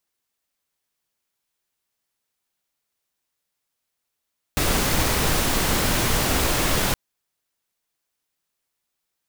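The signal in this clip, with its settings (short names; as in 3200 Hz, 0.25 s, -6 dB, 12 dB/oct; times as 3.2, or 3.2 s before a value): noise pink, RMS -21 dBFS 2.37 s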